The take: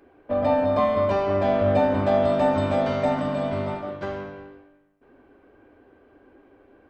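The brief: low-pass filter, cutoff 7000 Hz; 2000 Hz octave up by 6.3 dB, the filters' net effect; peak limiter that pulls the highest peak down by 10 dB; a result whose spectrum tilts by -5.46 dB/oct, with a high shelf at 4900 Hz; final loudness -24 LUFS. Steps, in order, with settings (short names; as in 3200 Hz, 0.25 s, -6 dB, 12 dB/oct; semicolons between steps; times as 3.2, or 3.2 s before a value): LPF 7000 Hz; bell 2000 Hz +8.5 dB; high shelf 4900 Hz -4.5 dB; gain +3 dB; limiter -15 dBFS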